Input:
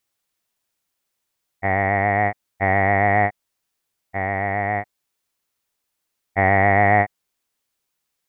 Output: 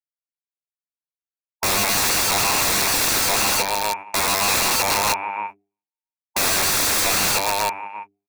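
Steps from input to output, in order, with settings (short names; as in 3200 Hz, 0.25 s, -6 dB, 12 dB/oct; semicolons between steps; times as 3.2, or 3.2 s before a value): reverb removal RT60 1.6 s; feedback echo 0.34 s, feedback 27%, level -3.5 dB; gate -44 dBFS, range -55 dB; HPF 140 Hz 12 dB/oct; high shelf 2100 Hz -4.5 dB; notches 50/100/150/200/250/300/350/400 Hz; overdrive pedal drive 19 dB, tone 2800 Hz, clips at -6 dBFS; formant shift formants +4 st; wrapped overs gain 19.5 dB; notch 3000 Hz, Q 5.8; gain +5 dB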